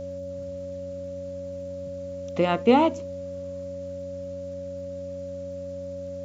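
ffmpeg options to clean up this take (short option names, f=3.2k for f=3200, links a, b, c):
-af "adeclick=t=4,bandreject=f=90.9:t=h:w=4,bandreject=f=181.8:t=h:w=4,bandreject=f=272.7:t=h:w=4,bandreject=f=560:w=30,afftdn=nr=30:nf=-35"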